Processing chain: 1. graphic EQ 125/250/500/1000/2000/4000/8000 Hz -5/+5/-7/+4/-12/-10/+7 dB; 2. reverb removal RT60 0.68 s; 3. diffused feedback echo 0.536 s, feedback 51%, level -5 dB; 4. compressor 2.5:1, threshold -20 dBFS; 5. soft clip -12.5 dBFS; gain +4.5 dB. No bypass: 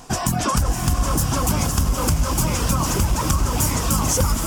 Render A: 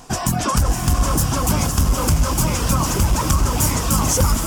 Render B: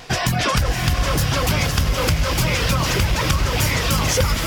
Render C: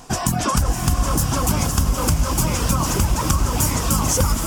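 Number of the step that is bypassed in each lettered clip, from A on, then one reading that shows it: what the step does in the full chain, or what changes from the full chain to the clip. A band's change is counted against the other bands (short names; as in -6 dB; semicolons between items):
4, crest factor change -1.5 dB; 1, 2 kHz band +8.0 dB; 5, distortion -24 dB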